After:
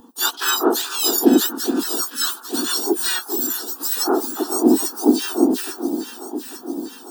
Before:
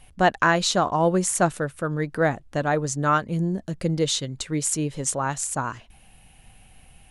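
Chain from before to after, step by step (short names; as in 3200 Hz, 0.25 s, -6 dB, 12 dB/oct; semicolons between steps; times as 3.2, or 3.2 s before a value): spectrum mirrored in octaves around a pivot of 1600 Hz; high shelf 8100 Hz +3.5 dB; harmoniser -4 st -8 dB, +4 st -17 dB, +12 st -8 dB; fixed phaser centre 580 Hz, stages 6; echo with dull and thin repeats by turns 0.424 s, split 1500 Hz, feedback 77%, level -8.5 dB; gain +5 dB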